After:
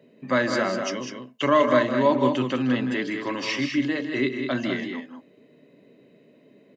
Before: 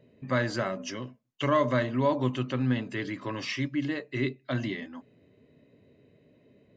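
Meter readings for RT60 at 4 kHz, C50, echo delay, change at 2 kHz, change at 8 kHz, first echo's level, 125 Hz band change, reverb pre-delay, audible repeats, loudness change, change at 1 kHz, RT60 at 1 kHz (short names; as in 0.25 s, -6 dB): none, none, 0.159 s, +6.5 dB, n/a, -11.0 dB, -3.0 dB, none, 2, +6.0 dB, +6.5 dB, none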